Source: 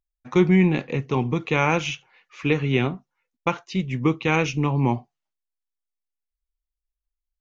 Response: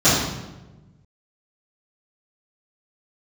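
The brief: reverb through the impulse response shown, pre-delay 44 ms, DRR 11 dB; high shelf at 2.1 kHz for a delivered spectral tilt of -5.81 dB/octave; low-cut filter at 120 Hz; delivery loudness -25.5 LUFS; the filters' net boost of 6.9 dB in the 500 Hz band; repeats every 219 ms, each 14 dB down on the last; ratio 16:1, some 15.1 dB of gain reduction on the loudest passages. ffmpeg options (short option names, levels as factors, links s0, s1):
-filter_complex "[0:a]highpass=120,equalizer=f=500:t=o:g=9,highshelf=f=2100:g=-3.5,acompressor=threshold=0.0562:ratio=16,aecho=1:1:219|438:0.2|0.0399,asplit=2[s0][s1];[1:a]atrim=start_sample=2205,adelay=44[s2];[s1][s2]afir=irnorm=-1:irlink=0,volume=0.02[s3];[s0][s3]amix=inputs=2:normalize=0,volume=1.88"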